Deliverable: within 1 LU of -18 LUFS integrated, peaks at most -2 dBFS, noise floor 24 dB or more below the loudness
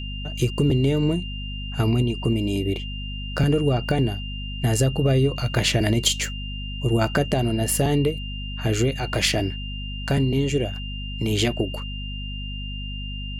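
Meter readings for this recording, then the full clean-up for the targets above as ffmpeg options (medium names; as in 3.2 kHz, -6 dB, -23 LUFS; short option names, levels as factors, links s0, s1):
hum 50 Hz; highest harmonic 250 Hz; hum level -29 dBFS; steady tone 2.8 kHz; tone level -35 dBFS; loudness -24.0 LUFS; peak level -5.5 dBFS; loudness target -18.0 LUFS
-> -af "bandreject=f=50:t=h:w=4,bandreject=f=100:t=h:w=4,bandreject=f=150:t=h:w=4,bandreject=f=200:t=h:w=4,bandreject=f=250:t=h:w=4"
-af "bandreject=f=2800:w=30"
-af "volume=2,alimiter=limit=0.794:level=0:latency=1"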